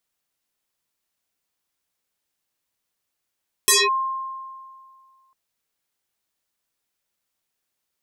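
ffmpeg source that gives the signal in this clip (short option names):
-f lavfi -i "aevalsrc='0.266*pow(10,-3*t/2.05)*sin(2*PI*1060*t+8.1*clip(1-t/0.21,0,1)*sin(2*PI*1.38*1060*t))':d=1.65:s=44100"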